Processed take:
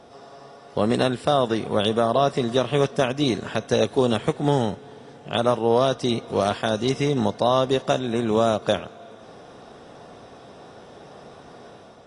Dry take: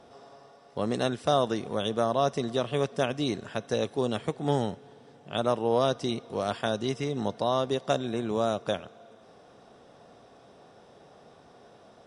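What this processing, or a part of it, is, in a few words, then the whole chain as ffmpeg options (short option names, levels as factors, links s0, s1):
low-bitrate web radio: -filter_complex "[0:a]asettb=1/sr,asplit=3[s0][s1][s2];[s0]atrim=end=0.804[s3];[s1]atrim=start=0.8:end=2.41,asetpts=PTS-STARTPTS,afade=t=in:d=0.004:c=qsin,afade=t=out:st=1.606:d=0.004:c=qsin,bandreject=f=6200:w=5.2[s4];[s2]atrim=start=2.406[s5];[s3][s4]acrossfade=d=0.004:c1=hsin:c2=qsin[s6];[s6][s5]acrossfade=d=0.004:c1=qsin:c2=hsin,dynaudnorm=f=100:g=7:m=1.5,alimiter=limit=0.224:level=0:latency=1:release=490,volume=1.88" -ar 24000 -c:a aac -b:a 32k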